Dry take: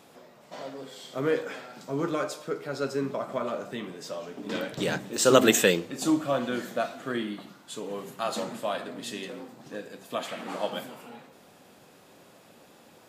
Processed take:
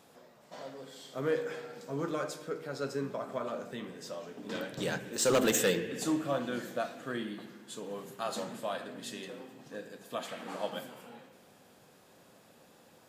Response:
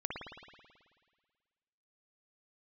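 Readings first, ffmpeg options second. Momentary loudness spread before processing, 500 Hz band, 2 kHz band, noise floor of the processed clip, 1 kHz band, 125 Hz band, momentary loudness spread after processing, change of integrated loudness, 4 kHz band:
18 LU, -6.0 dB, -6.5 dB, -61 dBFS, -6.5 dB, -4.5 dB, 17 LU, -6.5 dB, -7.0 dB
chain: -filter_complex "[0:a]asplit=2[a][b];[b]asuperstop=centerf=900:order=20:qfactor=0.96[c];[1:a]atrim=start_sample=2205,asetrate=37926,aresample=44100[d];[c][d]afir=irnorm=-1:irlink=0,volume=-12.5dB[e];[a][e]amix=inputs=2:normalize=0,asoftclip=type=hard:threshold=-15.5dB,volume=-5.5dB"

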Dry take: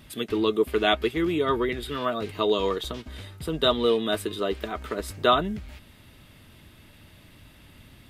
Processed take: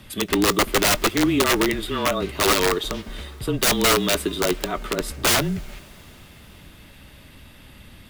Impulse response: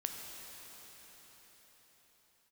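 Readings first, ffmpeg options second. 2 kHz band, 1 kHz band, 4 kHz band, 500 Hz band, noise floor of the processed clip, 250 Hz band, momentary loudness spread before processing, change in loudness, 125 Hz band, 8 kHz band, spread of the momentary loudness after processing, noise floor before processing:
+8.5 dB, +3.5 dB, +6.0 dB, +1.0 dB, -47 dBFS, +5.0 dB, 11 LU, +5.0 dB, +6.5 dB, +21.0 dB, 10 LU, -53 dBFS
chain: -filter_complex "[0:a]aeval=exprs='(mod(7.5*val(0)+1,2)-1)/7.5':c=same,afreqshift=-28,asplit=2[a][b];[1:a]atrim=start_sample=2205,adelay=22[c];[b][c]afir=irnorm=-1:irlink=0,volume=-21dB[d];[a][d]amix=inputs=2:normalize=0,volume=5.5dB"

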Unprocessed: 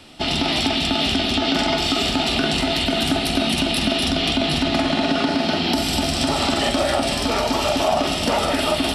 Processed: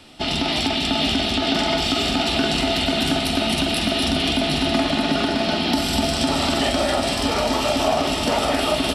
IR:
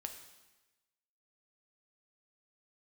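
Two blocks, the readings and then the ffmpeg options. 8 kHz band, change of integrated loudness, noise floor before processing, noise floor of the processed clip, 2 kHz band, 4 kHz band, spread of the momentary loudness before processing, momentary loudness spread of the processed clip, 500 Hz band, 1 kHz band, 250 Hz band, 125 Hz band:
-0.5 dB, -0.5 dB, -23 dBFS, -24 dBFS, -0.5 dB, -0.5 dB, 1 LU, 1 LU, 0.0 dB, -0.5 dB, -0.5 dB, -0.5 dB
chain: -filter_complex "[0:a]aecho=1:1:621|1242|1863|2484|3105|3726|4347:0.355|0.209|0.124|0.0729|0.043|0.0254|0.015,asplit=2[a][b];[1:a]atrim=start_sample=2205[c];[b][c]afir=irnorm=-1:irlink=0,volume=-1dB[d];[a][d]amix=inputs=2:normalize=0,aeval=exprs='0.794*(cos(1*acos(clip(val(0)/0.794,-1,1)))-cos(1*PI/2))+0.0141*(cos(3*acos(clip(val(0)/0.794,-1,1)))-cos(3*PI/2))':c=same,volume=-5dB"

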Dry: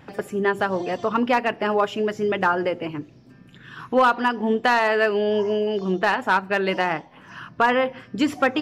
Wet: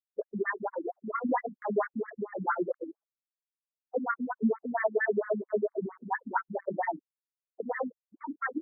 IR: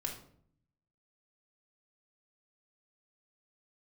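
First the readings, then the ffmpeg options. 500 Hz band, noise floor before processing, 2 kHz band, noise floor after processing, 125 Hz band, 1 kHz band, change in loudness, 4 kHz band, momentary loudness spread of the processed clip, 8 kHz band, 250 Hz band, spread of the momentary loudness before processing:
-10.0 dB, -49 dBFS, -12.5 dB, under -85 dBFS, -12.0 dB, -12.0 dB, -10.5 dB, under -40 dB, 9 LU, n/a, -9.5 dB, 9 LU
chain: -af "afftfilt=real='re*gte(hypot(re,im),0.224)':imag='im*gte(hypot(re,im),0.224)':win_size=1024:overlap=0.75,equalizer=f=630:t=o:w=0.33:g=4,equalizer=f=1.25k:t=o:w=0.33:g=-5,equalizer=f=2.5k:t=o:w=0.33:g=5,volume=18dB,asoftclip=hard,volume=-18dB,flanger=delay=15.5:depth=7.7:speed=1.3,afftfilt=real='re*between(b*sr/1024,210*pow(1600/210,0.5+0.5*sin(2*PI*4.4*pts/sr))/1.41,210*pow(1600/210,0.5+0.5*sin(2*PI*4.4*pts/sr))*1.41)':imag='im*between(b*sr/1024,210*pow(1600/210,0.5+0.5*sin(2*PI*4.4*pts/sr))/1.41,210*pow(1600/210,0.5+0.5*sin(2*PI*4.4*pts/sr))*1.41)':win_size=1024:overlap=0.75,volume=1.5dB"

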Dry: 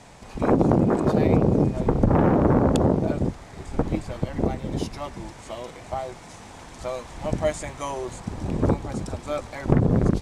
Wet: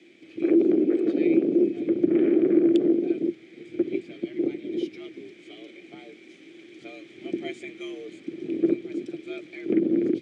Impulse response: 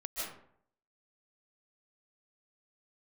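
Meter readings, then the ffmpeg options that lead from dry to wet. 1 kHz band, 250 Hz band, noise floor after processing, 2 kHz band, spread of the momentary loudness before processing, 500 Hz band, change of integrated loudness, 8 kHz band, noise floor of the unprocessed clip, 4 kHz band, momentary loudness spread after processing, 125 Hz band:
under -20 dB, +0.5 dB, -51 dBFS, -4.5 dB, 17 LU, -1.0 dB, -0.5 dB, under -15 dB, -44 dBFS, -4.0 dB, 20 LU, -21.0 dB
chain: -filter_complex "[0:a]asplit=3[a][b][c];[a]bandpass=f=270:t=q:w=8,volume=0dB[d];[b]bandpass=f=2.29k:t=q:w=8,volume=-6dB[e];[c]bandpass=f=3.01k:t=q:w=8,volume=-9dB[f];[d][e][f]amix=inputs=3:normalize=0,afreqshift=70,volume=8dB"

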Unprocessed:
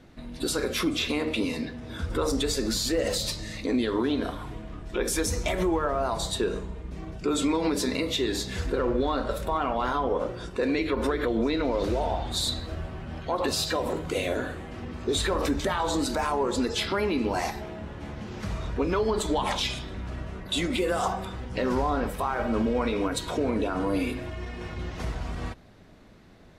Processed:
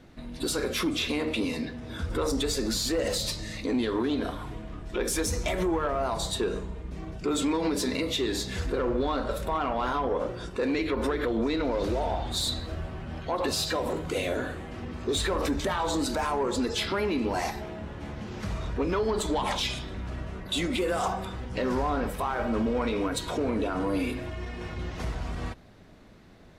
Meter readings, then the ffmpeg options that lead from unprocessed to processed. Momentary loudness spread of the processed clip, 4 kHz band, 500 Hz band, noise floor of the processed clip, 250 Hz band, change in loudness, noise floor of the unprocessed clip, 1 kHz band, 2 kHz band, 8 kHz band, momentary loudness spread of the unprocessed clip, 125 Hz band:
10 LU, -1.0 dB, -1.5 dB, -41 dBFS, -1.0 dB, -1.5 dB, -41 dBFS, -1.5 dB, -1.0 dB, -1.0 dB, 11 LU, -1.0 dB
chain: -af "asoftclip=type=tanh:threshold=-19dB"

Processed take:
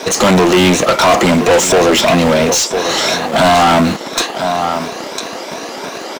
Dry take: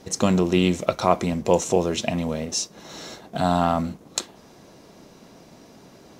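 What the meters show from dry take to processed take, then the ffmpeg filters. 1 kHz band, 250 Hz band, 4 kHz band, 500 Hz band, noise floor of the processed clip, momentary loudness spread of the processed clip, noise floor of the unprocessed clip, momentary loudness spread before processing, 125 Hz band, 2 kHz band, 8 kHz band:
+13.5 dB, +10.5 dB, +17.0 dB, +12.5 dB, -26 dBFS, 14 LU, -50 dBFS, 14 LU, +8.0 dB, +19.0 dB, +14.0 dB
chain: -filter_complex "[0:a]afftfilt=real='re*pow(10,7/40*sin(2*PI*(1.6*log(max(b,1)*sr/1024/100)/log(2)-(2.9)*(pts-256)/sr)))':imag='im*pow(10,7/40*sin(2*PI*(1.6*log(max(b,1)*sr/1024/100)/log(2)-(2.9)*(pts-256)/sr)))':win_size=1024:overlap=0.75,aecho=1:1:1004:0.119,acrossover=split=230|1500|3900[a][b][c][d];[a]acrusher=bits=7:mix=0:aa=0.000001[e];[e][b][c][d]amix=inputs=4:normalize=0,asplit=2[f][g];[g]highpass=f=720:p=1,volume=35dB,asoftclip=type=tanh:threshold=-2dB[h];[f][h]amix=inputs=2:normalize=0,lowpass=f=4.3k:p=1,volume=-6dB"

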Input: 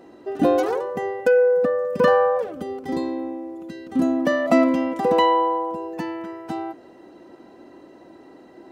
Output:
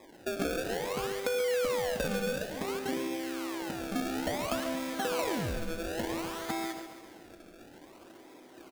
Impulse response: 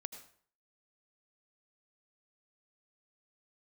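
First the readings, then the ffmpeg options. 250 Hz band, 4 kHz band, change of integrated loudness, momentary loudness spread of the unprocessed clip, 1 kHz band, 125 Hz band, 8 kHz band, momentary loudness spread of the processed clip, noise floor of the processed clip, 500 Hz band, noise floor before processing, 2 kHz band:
-12.0 dB, -1.5 dB, -12.0 dB, 14 LU, -14.0 dB, -3.5 dB, n/a, 22 LU, -54 dBFS, -13.0 dB, -48 dBFS, -7.0 dB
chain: -filter_complex "[0:a]lowpass=2.4k,agate=range=-8dB:threshold=-41dB:ratio=16:detection=peak,lowshelf=f=410:g=-8.5,acrusher=samples=30:mix=1:aa=0.000001:lfo=1:lforange=30:lforate=0.57,acompressor=threshold=-37dB:ratio=6,aecho=1:1:137|274|411|548|685|822|959:0.282|0.163|0.0948|0.055|0.0319|0.0185|0.0107,asplit=2[a][b];[1:a]atrim=start_sample=2205[c];[b][c]afir=irnorm=-1:irlink=0,volume=6.5dB[d];[a][d]amix=inputs=2:normalize=0,volume=-2.5dB"

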